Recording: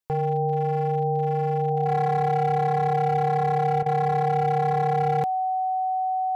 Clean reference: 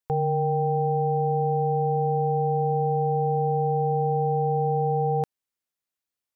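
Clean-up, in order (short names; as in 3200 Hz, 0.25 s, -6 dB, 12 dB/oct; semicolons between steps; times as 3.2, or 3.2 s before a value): clip repair -18 dBFS; notch 750 Hz, Q 30; interpolate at 3.83, 30 ms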